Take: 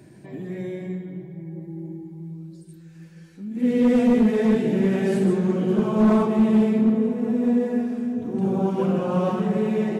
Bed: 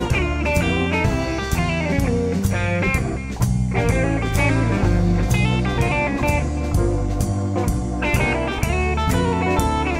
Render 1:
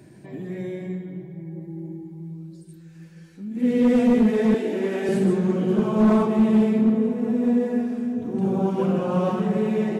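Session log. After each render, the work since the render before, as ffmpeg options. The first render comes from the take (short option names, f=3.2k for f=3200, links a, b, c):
-filter_complex "[0:a]asettb=1/sr,asplit=3[a][b][c];[a]atrim=end=4.544[d];[b]atrim=start=4.54:end=5.09,asetpts=PTS-STARTPTS,afade=t=in:d=0.004:c=qsin,afade=t=out:st=0.546:d=0.004:c=qsin,highpass=f=270:w=0.5412,highpass=f=270:w=1.3066[e];[c]atrim=start=5.086[f];[d][e]acrossfade=d=0.004:c1=hsin:c2=qsin[g];[g][f]acrossfade=d=0.004:c1=qsin:c2=hsin"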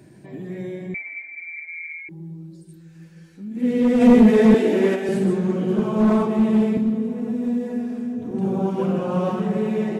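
-filter_complex "[0:a]asettb=1/sr,asplit=3[a][b][c];[a]atrim=end=0.944[d];[b]atrim=start=0.94:end=2.09,asetpts=PTS-STARTPTS,afade=t=in:d=0.004:c=qsin,afade=t=out:st=1.146:d=0.004:c=qsin,lowpass=f=2.1k:t=q:w=0.5098,lowpass=f=2.1k:t=q:w=0.6013,lowpass=f=2.1k:t=q:w=0.9,lowpass=f=2.1k:t=q:w=2.563,afreqshift=-2500[e];[c]atrim=start=2.086[f];[d][e]acrossfade=d=0.004:c1=hsin:c2=qsin[g];[g][f]acrossfade=d=0.004:c1=qsin:c2=hsin,asplit=3[h][i][j];[h]afade=t=out:st=4:d=0.02[k];[i]acontrast=78,afade=t=in:st=4:d=0.02,afade=t=out:st=4.94:d=0.02[l];[j]afade=t=in:st=4.94:d=0.02[m];[k][l][m]amix=inputs=3:normalize=0,asettb=1/sr,asplit=3[n][o][p];[n]atrim=end=6.774[q];[o]atrim=start=6.77:end=8.31,asetpts=PTS-STARTPTS,afade=t=in:d=0.004:c=qsin,afade=t=out:st=1.536:d=0.004:c=qsin,acrossover=split=240|3000[r][s][t];[s]acompressor=threshold=-31dB:ratio=2.5:attack=3.2:release=140:knee=2.83:detection=peak[u];[r][u][t]amix=inputs=3:normalize=0[v];[p]atrim=start=8.306[w];[q][v]acrossfade=d=0.004:c1=hsin:c2=qsin[x];[x][w]acrossfade=d=0.004:c1=qsin:c2=hsin"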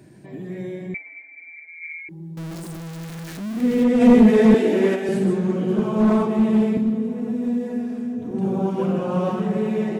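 -filter_complex "[0:a]asettb=1/sr,asplit=3[a][b][c];[a]atrim=end=0.974[d];[b]atrim=start=0.97:end=1.82,asetpts=PTS-STARTPTS,afade=t=in:d=0.004:c=qsin,afade=t=out:st=0.846:d=0.004:c=qsin,equalizer=f=2.6k:t=o:w=2.2:g=-7[e];[c]atrim=start=1.816[f];[d][e]acrossfade=d=0.004:c1=hsin:c2=qsin[g];[g][f]acrossfade=d=0.004:c1=qsin:c2=hsin,asettb=1/sr,asplit=3[h][i][j];[h]atrim=end=2.374[k];[i]atrim=start=2.37:end=3.84,asetpts=PTS-STARTPTS,afade=t=in:d=0.004:c=qsin,afade=t=out:st=1.466:d=0.004:c=qsin,aeval=exprs='val(0)+0.5*0.0335*sgn(val(0))':c=same[l];[j]atrim=start=3.836[m];[k][l]acrossfade=d=0.004:c1=hsin:c2=qsin[n];[n][m]acrossfade=d=0.004:c1=qsin:c2=hsin"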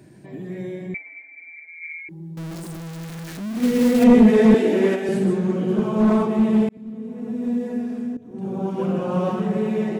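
-filter_complex "[0:a]asettb=1/sr,asplit=3[a][b][c];[a]atrim=end=3.544[d];[b]atrim=start=3.54:end=4.04,asetpts=PTS-STARTPTS,afade=t=in:d=0.004:c=qsin,afade=t=out:st=0.496:d=0.004:c=qsin,acrusher=bits=4:mode=log:mix=0:aa=0.000001[e];[c]atrim=start=4.036[f];[d][e]acrossfade=d=0.004:c1=hsin:c2=qsin[g];[g][f]acrossfade=d=0.004:c1=qsin:c2=hsin,asplit=3[h][i][j];[h]atrim=end=6.69,asetpts=PTS-STARTPTS,afade=t=out:st=6.686:d=0.004:c=hsin[k];[i]atrim=start=6.69:end=8.17,asetpts=PTS-STARTPTS,afade=t=in:d=0.87,afade=t=out:st=1.476:d=0.004:c=hsin:silence=0.149624[l];[j]atrim=start=8.17,asetpts=PTS-STARTPTS,afade=t=in:d=1.07:c=qsin:silence=0.149624[m];[k][l][m]concat=n=3:v=0:a=1"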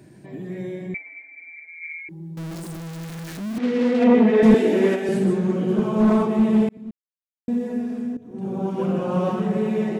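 -filter_complex "[0:a]asettb=1/sr,asplit=3[a][b][c];[a]atrim=end=3.584[d];[b]atrim=start=3.58:end=4.43,asetpts=PTS-STARTPTS,afade=t=in:d=0.004:c=qsin,afade=t=out:st=0.846:d=0.004:c=qsin,highpass=260,lowpass=3.3k[e];[c]atrim=start=4.426[f];[d][e]acrossfade=d=0.004:c1=hsin:c2=qsin[g];[g][f]acrossfade=d=0.004:c1=qsin:c2=hsin,asplit=3[h][i][j];[h]atrim=end=6.91,asetpts=PTS-STARTPTS,afade=t=out:st=6.906:d=0.004:c=hsin[k];[i]atrim=start=6.91:end=7.48,asetpts=PTS-STARTPTS,volume=0[l];[j]atrim=start=7.48,asetpts=PTS-STARTPTS,afade=t=in:d=0.004:c=hsin[m];[k][l][m]concat=n=3:v=0:a=1"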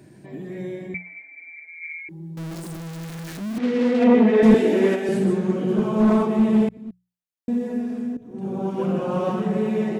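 -af "bandreject=f=60:t=h:w=6,bandreject=f=120:t=h:w=6,bandreject=f=180:t=h:w=6"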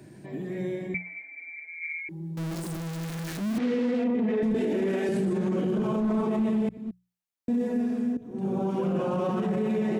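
-filter_complex "[0:a]acrossover=split=330[a][b];[b]acompressor=threshold=-24dB:ratio=6[c];[a][c]amix=inputs=2:normalize=0,alimiter=limit=-20dB:level=0:latency=1:release=20"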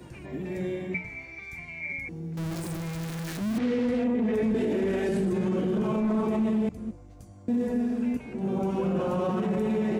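-filter_complex "[1:a]volume=-27.5dB[a];[0:a][a]amix=inputs=2:normalize=0"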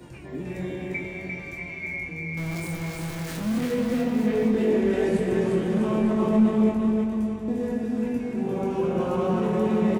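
-filter_complex "[0:a]asplit=2[a][b];[b]adelay=23,volume=-5.5dB[c];[a][c]amix=inputs=2:normalize=0,aecho=1:1:350|647.5|900.4|1115|1298:0.631|0.398|0.251|0.158|0.1"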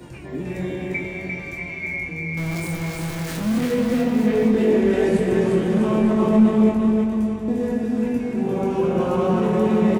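-af "volume=4.5dB"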